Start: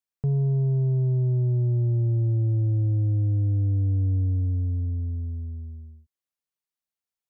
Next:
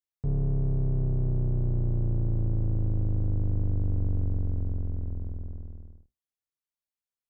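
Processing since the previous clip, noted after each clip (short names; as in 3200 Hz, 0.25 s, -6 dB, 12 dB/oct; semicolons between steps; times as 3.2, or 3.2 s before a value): octaver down 2 oct, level +2 dB; gain -7 dB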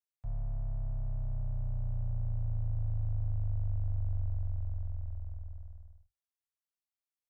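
elliptic band-stop 110–630 Hz, stop band 40 dB; gain -5.5 dB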